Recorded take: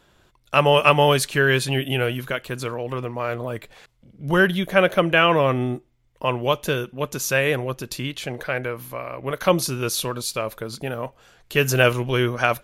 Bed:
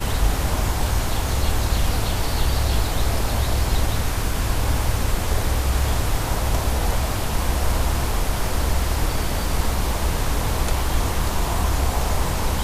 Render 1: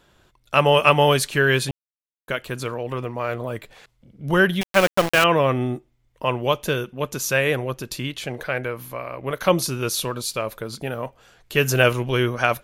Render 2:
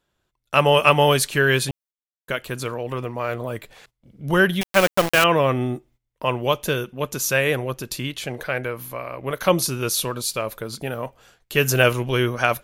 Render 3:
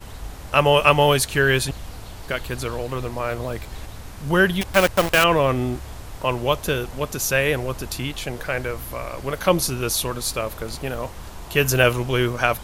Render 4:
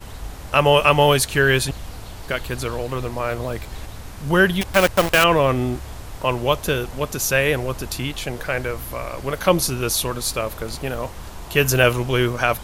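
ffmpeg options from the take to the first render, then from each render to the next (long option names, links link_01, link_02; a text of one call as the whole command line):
ffmpeg -i in.wav -filter_complex "[0:a]asettb=1/sr,asplit=3[link_01][link_02][link_03];[link_01]atrim=end=4.614[link_04];[link_02]atrim=start=4.61:end=5.24,asetpts=PTS-STARTPTS,afade=type=in:duration=0.004:curve=qsin,afade=type=out:start_time=0.626:duration=0.004:curve=qsin,aeval=exprs='val(0)*gte(abs(val(0)),0.119)':channel_layout=same[link_05];[link_03]atrim=start=5.236[link_06];[link_04][link_05]acrossfade=duration=0.004:curve1=hsin:curve2=qsin[link_07];[link_07][link_06]acrossfade=duration=0.004:curve1=qsin:curve2=hsin,asplit=3[link_08][link_09][link_10];[link_08]atrim=end=1.71,asetpts=PTS-STARTPTS,afade=type=out:start_time=1.706:duration=0.004:curve=hsin[link_11];[link_09]atrim=start=1.71:end=2.28,asetpts=PTS-STARTPTS,volume=0[link_12];[link_10]atrim=start=2.28,asetpts=PTS-STARTPTS,afade=type=in:duration=0.004:curve=hsin[link_13];[link_11][link_12][link_13]concat=n=3:v=0:a=1" out.wav
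ffmpeg -i in.wav -af "agate=range=-16dB:threshold=-52dB:ratio=16:detection=peak,highshelf=frequency=7600:gain=5" out.wav
ffmpeg -i in.wav -i bed.wav -filter_complex "[1:a]volume=-15dB[link_01];[0:a][link_01]amix=inputs=2:normalize=0" out.wav
ffmpeg -i in.wav -af "volume=1.5dB,alimiter=limit=-3dB:level=0:latency=1" out.wav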